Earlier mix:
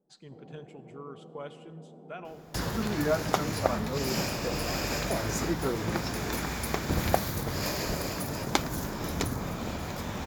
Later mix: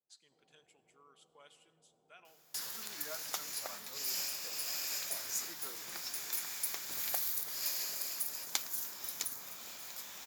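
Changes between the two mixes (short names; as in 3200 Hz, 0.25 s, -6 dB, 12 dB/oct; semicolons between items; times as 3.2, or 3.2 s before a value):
first sound: remove brick-wall FIR high-pass 150 Hz; master: add differentiator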